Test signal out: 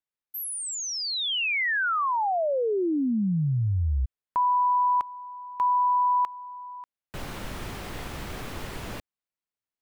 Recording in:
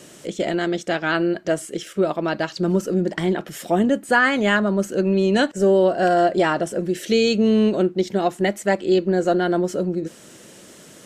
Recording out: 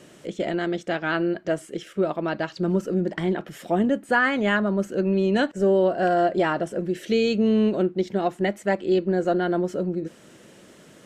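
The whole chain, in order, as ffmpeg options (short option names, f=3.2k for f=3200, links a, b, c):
-af "bass=f=250:g=1,treble=f=4k:g=-8,volume=-3.5dB"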